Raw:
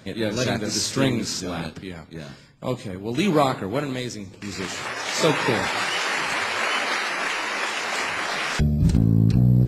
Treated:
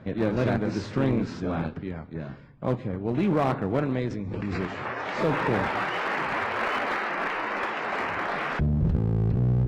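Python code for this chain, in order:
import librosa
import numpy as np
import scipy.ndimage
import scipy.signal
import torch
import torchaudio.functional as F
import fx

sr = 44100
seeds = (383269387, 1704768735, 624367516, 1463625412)

p1 = scipy.signal.sosfilt(scipy.signal.butter(2, 1600.0, 'lowpass', fs=sr, output='sos'), x)
p2 = fx.low_shelf(p1, sr, hz=150.0, db=4.0)
p3 = fx.over_compress(p2, sr, threshold_db=-22.0, ratio=-0.5)
p4 = p2 + (p3 * 10.0 ** (-2.5 / 20.0))
p5 = fx.clip_asym(p4, sr, top_db=-17.0, bottom_db=-7.5)
p6 = fx.pre_swell(p5, sr, db_per_s=20.0, at=(3.92, 4.63))
y = p6 * 10.0 ** (-6.0 / 20.0)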